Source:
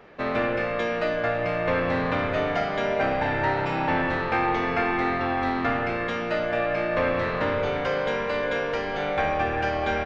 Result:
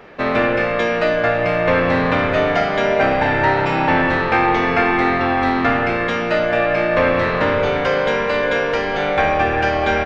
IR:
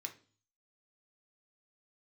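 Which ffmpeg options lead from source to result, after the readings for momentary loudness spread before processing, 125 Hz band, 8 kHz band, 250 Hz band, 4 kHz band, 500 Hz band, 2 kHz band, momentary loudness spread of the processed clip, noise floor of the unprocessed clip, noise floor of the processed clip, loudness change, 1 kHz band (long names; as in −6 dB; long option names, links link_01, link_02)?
2 LU, +7.5 dB, can't be measured, +8.0 dB, +8.5 dB, +8.0 dB, +9.0 dB, 2 LU, −29 dBFS, −21 dBFS, +8.5 dB, +8.0 dB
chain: -filter_complex "[0:a]asplit=2[link_01][link_02];[1:a]atrim=start_sample=2205[link_03];[link_02][link_03]afir=irnorm=-1:irlink=0,volume=-12dB[link_04];[link_01][link_04]amix=inputs=2:normalize=0,volume=7.5dB"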